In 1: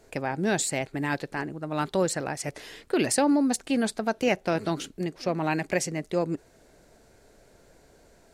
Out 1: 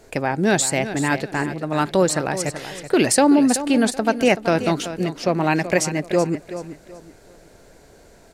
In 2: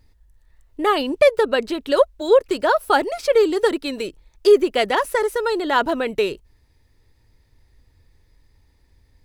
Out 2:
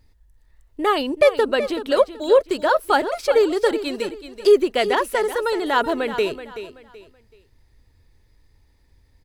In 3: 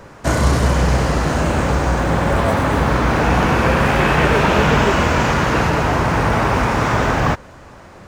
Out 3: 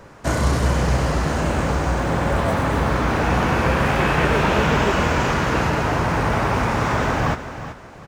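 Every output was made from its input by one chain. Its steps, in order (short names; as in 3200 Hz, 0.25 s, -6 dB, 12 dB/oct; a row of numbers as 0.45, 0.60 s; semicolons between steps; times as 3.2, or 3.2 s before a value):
feedback echo 0.379 s, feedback 29%, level -12 dB; match loudness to -20 LUFS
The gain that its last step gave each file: +7.5, -1.0, -4.0 dB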